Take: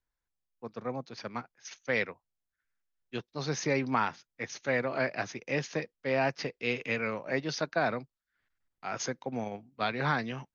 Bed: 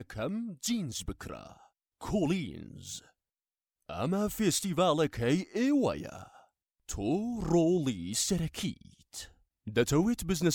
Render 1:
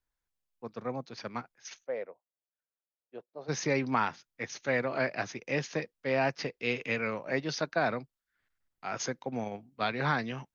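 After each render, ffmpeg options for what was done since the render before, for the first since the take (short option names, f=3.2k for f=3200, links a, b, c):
-filter_complex "[0:a]asplit=3[a][b][c];[a]afade=t=out:st=1.83:d=0.02[d];[b]bandpass=f=580:t=q:w=2.6,afade=t=in:st=1.83:d=0.02,afade=t=out:st=3.48:d=0.02[e];[c]afade=t=in:st=3.48:d=0.02[f];[d][e][f]amix=inputs=3:normalize=0"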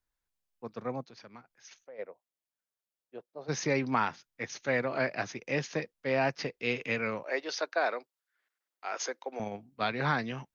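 -filter_complex "[0:a]asplit=3[a][b][c];[a]afade=t=out:st=1.03:d=0.02[d];[b]acompressor=threshold=-52dB:ratio=2.5:attack=3.2:release=140:knee=1:detection=peak,afade=t=in:st=1.03:d=0.02,afade=t=out:st=1.98:d=0.02[e];[c]afade=t=in:st=1.98:d=0.02[f];[d][e][f]amix=inputs=3:normalize=0,asettb=1/sr,asplit=3[g][h][i];[g]atrim=end=7.234[j];[h]atrim=start=7.23:end=9.4,asetpts=PTS-STARTPTS,afade=t=in:d=0.004:c=qsin,afade=t=out:st=2.166:d=0.004:c=qsin,highpass=f=370:w=0.5412,highpass=f=370:w=1.3066[k];[i]atrim=start=9.396[l];[j][k]acrossfade=d=0.004:c1=hsin:c2=qsin[m];[m][l]acrossfade=d=0.004:c1=qsin:c2=hsin"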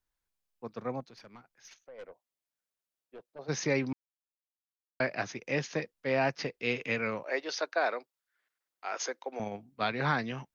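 -filter_complex "[0:a]asettb=1/sr,asplit=3[a][b][c];[a]atrim=end=1.004[d];[b]atrim=start=1:end=3.39,asetpts=PTS-STARTPTS,afade=t=in:d=0.004:c=qsin,afade=t=out:st=2.386:d=0.004:c=qsin,aeval=exprs='(tanh(112*val(0)+0.2)-tanh(0.2))/112':c=same[e];[c]atrim=start=3.386[f];[d][e]acrossfade=d=0.004:c1=hsin:c2=qsin[g];[g][f]acrossfade=d=0.004:c1=qsin:c2=hsin,asplit=3[h][i][j];[h]atrim=end=3.93,asetpts=PTS-STARTPTS,afade=t=out:st=3.926:d=0.004:c=hsin[k];[i]atrim=start=3.93:end=5,asetpts=PTS-STARTPTS,volume=0[l];[j]atrim=start=5,asetpts=PTS-STARTPTS,afade=t=in:d=0.004:c=hsin[m];[k][l][m]concat=n=3:v=0:a=1"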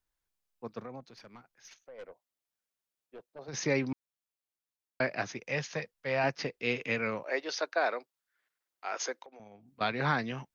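-filter_complex "[0:a]asplit=3[a][b][c];[a]afade=t=out:st=0.83:d=0.02[d];[b]acompressor=threshold=-39dB:ratio=6:attack=3.2:release=140:knee=1:detection=peak,afade=t=in:st=0.83:d=0.02,afade=t=out:st=3.53:d=0.02[e];[c]afade=t=in:st=3.53:d=0.02[f];[d][e][f]amix=inputs=3:normalize=0,asettb=1/sr,asplit=3[g][h][i];[g]atrim=end=5.434[j];[h]atrim=start=5.43:end=6.24,asetpts=PTS-STARTPTS,afade=t=in:d=0.004:c=qsin,afade=t=out:st=0.806:d=0.004:c=qsin,equalizer=f=310:t=o:w=0.77:g=-11[k];[i]atrim=start=6.236[l];[j][k]acrossfade=d=0.004:c1=hsin:c2=qsin[m];[m][l]acrossfade=d=0.004:c1=qsin:c2=hsin,asettb=1/sr,asplit=3[n][o][p];[n]atrim=end=9.244[q];[o]atrim=start=9.24:end=9.81,asetpts=PTS-STARTPTS,afade=t=in:d=0.004:c=qsin,afade=t=out:st=0.566:d=0.004:c=qsin,acompressor=threshold=-54dB:ratio=3:attack=3.2:release=140:knee=1:detection=peak[r];[p]atrim=start=9.806[s];[q][r]acrossfade=d=0.004:c1=hsin:c2=qsin[t];[t][s]acrossfade=d=0.004:c1=qsin:c2=hsin"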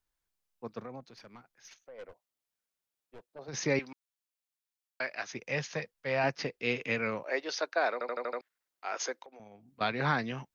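-filter_complex "[0:a]asettb=1/sr,asplit=3[a][b][c];[a]atrim=end=2.094[d];[b]atrim=start=2.09:end=3.28,asetpts=PTS-STARTPTS,afade=t=in:d=0.004:c=qsin,afade=t=out:st=1.186:d=0.004:c=qsin,aeval=exprs='clip(val(0),-1,0.00106)':c=same[e];[c]atrim=start=3.276[f];[d][e]acrossfade=d=0.004:c1=hsin:c2=qsin[g];[g][f]acrossfade=d=0.004:c1=qsin:c2=hsin,asettb=1/sr,asplit=3[h][i][j];[h]atrim=end=3.794[k];[i]atrim=start=3.79:end=5.33,asetpts=PTS-STARTPTS,afade=t=in:d=0.004:c=qsin,afade=t=out:st=1.536:d=0.004:c=qsin,highpass=f=1.3k:p=1[l];[j]atrim=start=5.326[m];[k][l]acrossfade=d=0.004:c1=hsin:c2=qsin[n];[n][m]acrossfade=d=0.004:c1=qsin:c2=hsin,asplit=7[o][p][q][r][s][t][u];[o]atrim=end=8.012[v];[p]atrim=start=7.928:end=8.012[w];[q]atrim=start=7.928:end=8.012[x];[r]atrim=start=7.928:end=8.012[y];[s]atrim=start=7.928:end=8.012[z];[t]atrim=start=7.928:end=8.012[aa];[u]atrim=start=8.408[ab];[v][w]acrossfade=d=0.004:c1=hsin:c2=hsin[ac];[ac][x]acrossfade=d=0.004:c1=hsin:c2=hsin[ad];[ad][y]acrossfade=d=0.004:c1=hsin:c2=hsin[ae];[ae][z]acrossfade=d=0.004:c1=hsin:c2=hsin[af];[af][aa]acrossfade=d=0.004:c1=hsin:c2=hsin[ag];[ag][ab]acrossfade=d=0.004:c1=hsin:c2=hsin"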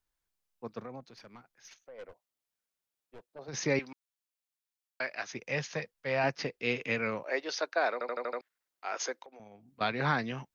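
-af anull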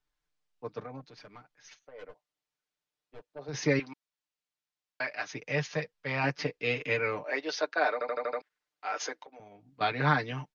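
-af "lowpass=5.7k,aecho=1:1:6.7:0.79"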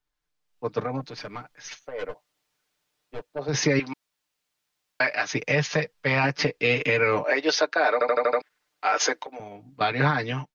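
-af "dynaudnorm=f=430:g=3:m=14dB,alimiter=limit=-11.5dB:level=0:latency=1:release=131"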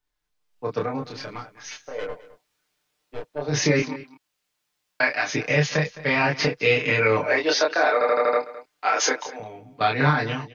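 -filter_complex "[0:a]asplit=2[a][b];[b]adelay=27,volume=-2dB[c];[a][c]amix=inputs=2:normalize=0,aecho=1:1:212:0.133"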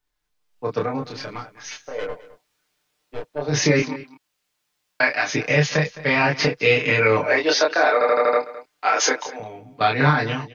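-af "volume=2.5dB"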